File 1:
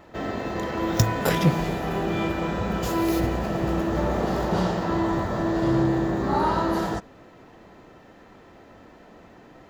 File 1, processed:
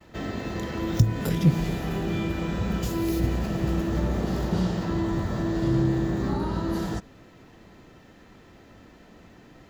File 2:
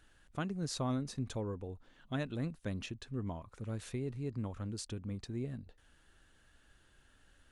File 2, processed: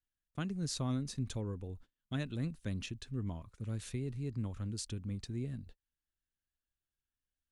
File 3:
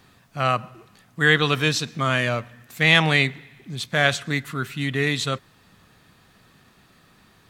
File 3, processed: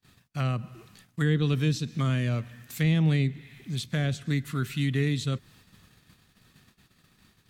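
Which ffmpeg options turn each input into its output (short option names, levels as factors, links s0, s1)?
-filter_complex "[0:a]agate=range=0.0282:threshold=0.002:ratio=16:detection=peak,equalizer=f=750:w=0.47:g=-9,acrossover=split=460[s0][s1];[s1]acompressor=threshold=0.0141:ratio=10[s2];[s0][s2]amix=inputs=2:normalize=0,volume=1.41"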